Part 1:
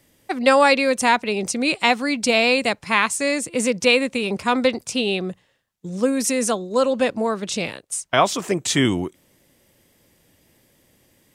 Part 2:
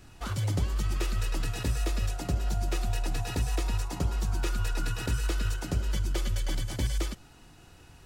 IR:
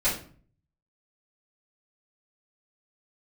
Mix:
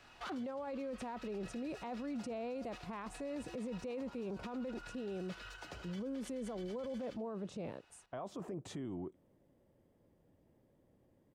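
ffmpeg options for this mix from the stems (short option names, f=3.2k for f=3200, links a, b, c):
-filter_complex "[0:a]firequalizer=gain_entry='entry(580,0);entry(2100,-17);entry(5500,-23)':delay=0.05:min_phase=1,acompressor=threshold=-20dB:ratio=6,volume=-8.5dB,asplit=2[a][b];[1:a]acrossover=split=500 5000:gain=0.126 1 0.158[c][d][e];[c][d][e]amix=inputs=3:normalize=0,bandreject=f=50:t=h:w=6,bandreject=f=100:t=h:w=6,volume=0dB,asplit=2[f][g];[g]volume=-21dB[h];[b]apad=whole_len=355388[i];[f][i]sidechaincompress=threshold=-45dB:ratio=3:attack=11:release=1310[j];[h]aecho=0:1:80:1[k];[a][j][k]amix=inputs=3:normalize=0,alimiter=level_in=11.5dB:limit=-24dB:level=0:latency=1:release=12,volume=-11.5dB"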